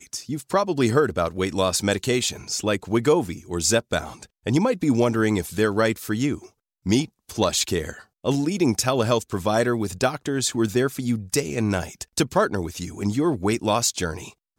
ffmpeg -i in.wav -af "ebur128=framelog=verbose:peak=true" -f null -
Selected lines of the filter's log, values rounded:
Integrated loudness:
  I:         -23.2 LUFS
  Threshold: -33.4 LUFS
Loudness range:
  LRA:         1.8 LU
  Threshold: -43.4 LUFS
  LRA low:   -24.3 LUFS
  LRA high:  -22.6 LUFS
True peak:
  Peak:       -6.7 dBFS